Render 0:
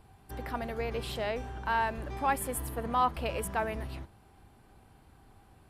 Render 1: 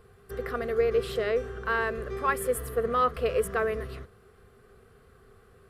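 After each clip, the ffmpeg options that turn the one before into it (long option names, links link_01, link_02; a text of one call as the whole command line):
ffmpeg -i in.wav -af "superequalizer=6b=0.447:7b=3.98:9b=0.355:10b=2.24:11b=1.78" out.wav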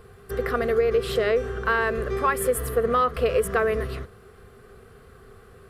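ffmpeg -i in.wav -af "acompressor=threshold=-25dB:ratio=6,volume=7.5dB" out.wav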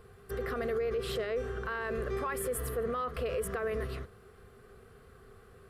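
ffmpeg -i in.wav -af "alimiter=limit=-19.5dB:level=0:latency=1:release=15,volume=-6.5dB" out.wav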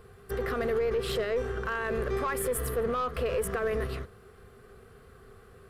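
ffmpeg -i in.wav -af "aeval=exprs='0.0531*(cos(1*acos(clip(val(0)/0.0531,-1,1)))-cos(1*PI/2))+0.00266*(cos(4*acos(clip(val(0)/0.0531,-1,1)))-cos(4*PI/2))+0.00119*(cos(7*acos(clip(val(0)/0.0531,-1,1)))-cos(7*PI/2))':channel_layout=same,volume=4dB" out.wav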